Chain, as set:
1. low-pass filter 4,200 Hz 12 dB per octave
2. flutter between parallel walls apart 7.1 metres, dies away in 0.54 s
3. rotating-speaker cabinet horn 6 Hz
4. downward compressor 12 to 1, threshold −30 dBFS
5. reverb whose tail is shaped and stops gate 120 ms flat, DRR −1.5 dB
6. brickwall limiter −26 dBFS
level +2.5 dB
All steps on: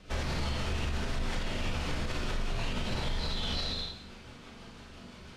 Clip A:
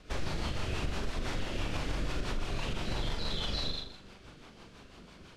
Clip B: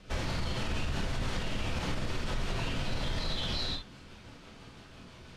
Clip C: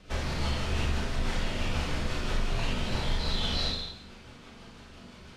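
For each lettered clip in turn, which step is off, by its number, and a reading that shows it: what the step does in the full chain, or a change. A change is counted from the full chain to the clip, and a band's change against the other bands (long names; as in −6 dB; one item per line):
5, change in momentary loudness spread +2 LU
2, change in momentary loudness spread +1 LU
6, average gain reduction 2.0 dB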